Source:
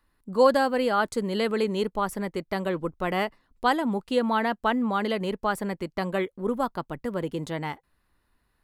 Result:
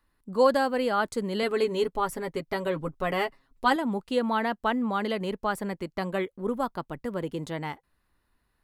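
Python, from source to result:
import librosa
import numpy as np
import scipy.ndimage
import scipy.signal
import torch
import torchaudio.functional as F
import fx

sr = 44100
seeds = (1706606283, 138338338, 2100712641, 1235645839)

y = fx.comb(x, sr, ms=7.3, depth=0.69, at=(1.42, 3.76))
y = y * librosa.db_to_amplitude(-2.0)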